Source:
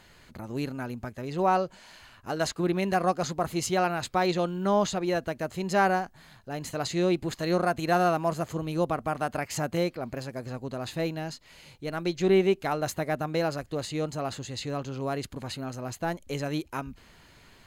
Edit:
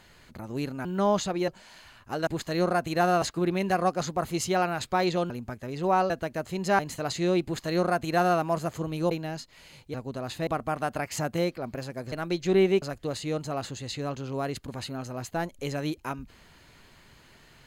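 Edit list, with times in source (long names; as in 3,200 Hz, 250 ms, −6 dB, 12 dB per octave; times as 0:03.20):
0:00.85–0:01.65: swap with 0:04.52–0:05.15
0:05.84–0:06.54: remove
0:07.19–0:08.14: duplicate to 0:02.44
0:08.86–0:10.51: swap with 0:11.04–0:11.87
0:12.57–0:13.50: remove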